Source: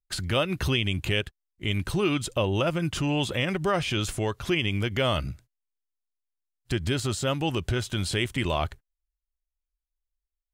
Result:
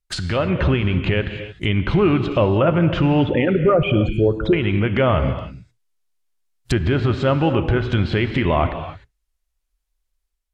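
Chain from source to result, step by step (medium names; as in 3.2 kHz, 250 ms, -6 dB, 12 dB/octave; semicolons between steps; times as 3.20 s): 3.21–4.53 s: resonances exaggerated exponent 3; in parallel at +1 dB: peak limiter -21.5 dBFS, peak gain reduction 10.5 dB; on the sum: low-pass that closes with the level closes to 2.1 kHz, closed at -17 dBFS; gated-style reverb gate 330 ms flat, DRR 8 dB; level rider gain up to 5 dB; low-pass that closes with the level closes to 2.5 kHz, closed at -16 dBFS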